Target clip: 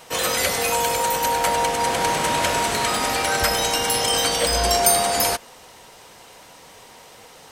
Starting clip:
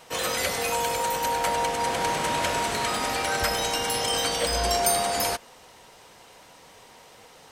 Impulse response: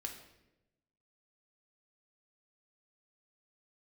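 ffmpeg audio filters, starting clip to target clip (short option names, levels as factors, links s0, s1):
-af "highshelf=f=7600:g=4,volume=1.68"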